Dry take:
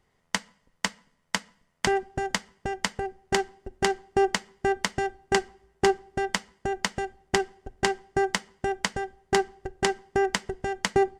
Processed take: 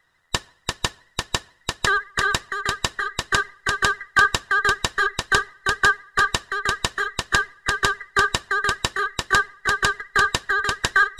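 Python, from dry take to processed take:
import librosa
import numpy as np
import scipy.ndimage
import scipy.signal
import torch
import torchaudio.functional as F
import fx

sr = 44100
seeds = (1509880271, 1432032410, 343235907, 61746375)

y = fx.band_invert(x, sr, width_hz=2000)
y = fx.vibrato(y, sr, rate_hz=14.0, depth_cents=65.0)
y = y + 10.0 ** (-3.0 / 20.0) * np.pad(y, (int(344 * sr / 1000.0), 0))[:len(y)]
y = y * 10.0 ** (4.0 / 20.0)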